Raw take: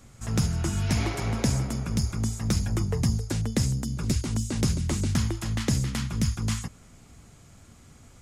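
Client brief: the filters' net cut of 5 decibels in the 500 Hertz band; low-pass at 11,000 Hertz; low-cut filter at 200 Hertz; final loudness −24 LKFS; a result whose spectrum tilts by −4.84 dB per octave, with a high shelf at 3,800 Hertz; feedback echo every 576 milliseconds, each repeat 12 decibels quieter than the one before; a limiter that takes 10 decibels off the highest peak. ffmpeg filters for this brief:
ffmpeg -i in.wav -af "highpass=200,lowpass=11000,equalizer=frequency=500:width_type=o:gain=-6.5,highshelf=frequency=3800:gain=-7,alimiter=level_in=2dB:limit=-24dB:level=0:latency=1,volume=-2dB,aecho=1:1:576|1152|1728:0.251|0.0628|0.0157,volume=12.5dB" out.wav

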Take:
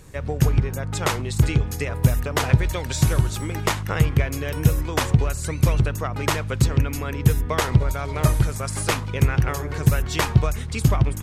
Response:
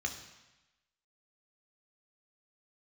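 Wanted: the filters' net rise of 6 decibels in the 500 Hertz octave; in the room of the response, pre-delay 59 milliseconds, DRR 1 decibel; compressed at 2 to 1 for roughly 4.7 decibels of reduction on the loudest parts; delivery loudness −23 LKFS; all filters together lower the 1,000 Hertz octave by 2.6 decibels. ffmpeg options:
-filter_complex "[0:a]equalizer=frequency=500:width_type=o:gain=8.5,equalizer=frequency=1000:width_type=o:gain=-6,acompressor=threshold=-19dB:ratio=2,asplit=2[link_01][link_02];[1:a]atrim=start_sample=2205,adelay=59[link_03];[link_02][link_03]afir=irnorm=-1:irlink=0,volume=-3.5dB[link_04];[link_01][link_04]amix=inputs=2:normalize=0,volume=-1dB"

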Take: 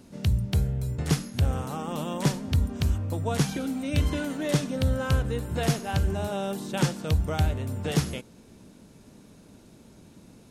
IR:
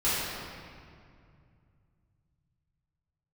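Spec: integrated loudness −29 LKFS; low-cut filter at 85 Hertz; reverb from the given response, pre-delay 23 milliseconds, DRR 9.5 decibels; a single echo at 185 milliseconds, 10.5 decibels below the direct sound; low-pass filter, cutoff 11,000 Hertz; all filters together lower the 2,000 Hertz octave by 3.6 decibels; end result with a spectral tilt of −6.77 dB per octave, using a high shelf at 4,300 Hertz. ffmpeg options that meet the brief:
-filter_complex "[0:a]highpass=85,lowpass=11000,equalizer=frequency=2000:width_type=o:gain=-4,highshelf=frequency=4300:gain=-4.5,aecho=1:1:185:0.299,asplit=2[link_01][link_02];[1:a]atrim=start_sample=2205,adelay=23[link_03];[link_02][link_03]afir=irnorm=-1:irlink=0,volume=-22dB[link_04];[link_01][link_04]amix=inputs=2:normalize=0,volume=-1dB"

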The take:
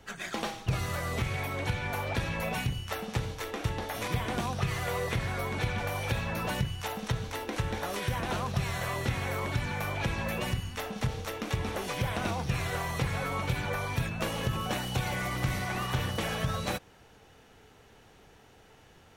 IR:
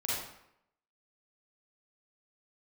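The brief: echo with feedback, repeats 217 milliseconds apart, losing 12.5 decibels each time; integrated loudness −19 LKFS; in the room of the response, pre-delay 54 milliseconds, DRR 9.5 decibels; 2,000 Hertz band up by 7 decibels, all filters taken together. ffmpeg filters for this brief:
-filter_complex "[0:a]equalizer=frequency=2000:width_type=o:gain=8.5,aecho=1:1:217|434|651:0.237|0.0569|0.0137,asplit=2[link_01][link_02];[1:a]atrim=start_sample=2205,adelay=54[link_03];[link_02][link_03]afir=irnorm=-1:irlink=0,volume=-15dB[link_04];[link_01][link_04]amix=inputs=2:normalize=0,volume=10dB"

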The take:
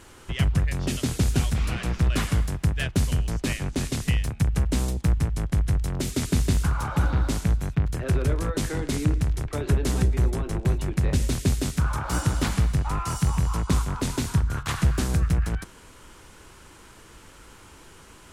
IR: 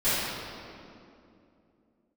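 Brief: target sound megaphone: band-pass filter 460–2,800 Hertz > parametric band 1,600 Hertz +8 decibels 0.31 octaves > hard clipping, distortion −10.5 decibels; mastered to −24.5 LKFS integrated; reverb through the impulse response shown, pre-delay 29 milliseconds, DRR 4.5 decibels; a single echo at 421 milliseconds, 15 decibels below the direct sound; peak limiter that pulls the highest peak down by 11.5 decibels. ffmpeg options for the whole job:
-filter_complex "[0:a]alimiter=limit=-21dB:level=0:latency=1,aecho=1:1:421:0.178,asplit=2[link_01][link_02];[1:a]atrim=start_sample=2205,adelay=29[link_03];[link_02][link_03]afir=irnorm=-1:irlink=0,volume=-19.5dB[link_04];[link_01][link_04]amix=inputs=2:normalize=0,highpass=460,lowpass=2800,equalizer=frequency=1600:width_type=o:width=0.31:gain=8,asoftclip=type=hard:threshold=-33.5dB,volume=14.5dB"

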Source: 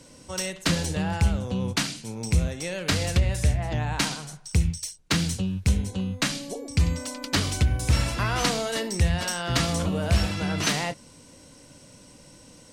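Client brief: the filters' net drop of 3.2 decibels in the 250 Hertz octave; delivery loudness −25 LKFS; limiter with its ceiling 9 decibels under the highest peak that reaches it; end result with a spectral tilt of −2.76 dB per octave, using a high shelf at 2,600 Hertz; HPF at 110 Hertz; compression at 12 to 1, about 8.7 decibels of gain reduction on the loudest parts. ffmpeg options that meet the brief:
ffmpeg -i in.wav -af "highpass=110,equalizer=frequency=250:width_type=o:gain=-4.5,highshelf=frequency=2600:gain=8.5,acompressor=threshold=-25dB:ratio=12,volume=5.5dB,alimiter=limit=-14dB:level=0:latency=1" out.wav

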